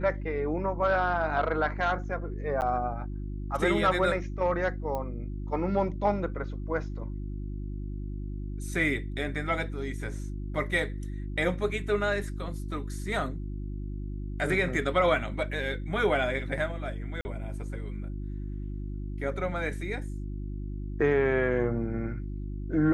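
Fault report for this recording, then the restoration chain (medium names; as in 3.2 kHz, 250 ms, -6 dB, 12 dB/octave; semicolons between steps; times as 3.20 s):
hum 50 Hz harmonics 7 -35 dBFS
2.61–2.62 s: dropout 9.4 ms
4.95 s: pop -21 dBFS
17.21–17.25 s: dropout 40 ms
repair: de-click; de-hum 50 Hz, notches 7; interpolate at 2.61 s, 9.4 ms; interpolate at 17.21 s, 40 ms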